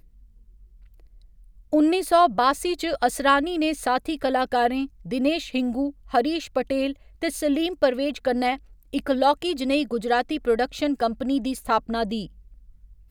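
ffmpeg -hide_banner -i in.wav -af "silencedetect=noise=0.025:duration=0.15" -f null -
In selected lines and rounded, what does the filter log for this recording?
silence_start: 0.00
silence_end: 1.73 | silence_duration: 1.73
silence_start: 4.86
silence_end: 5.06 | silence_duration: 0.20
silence_start: 5.90
silence_end: 6.14 | silence_duration: 0.23
silence_start: 6.92
silence_end: 7.22 | silence_duration: 0.30
silence_start: 8.56
silence_end: 8.93 | silence_duration: 0.37
silence_start: 12.26
silence_end: 13.11 | silence_duration: 0.84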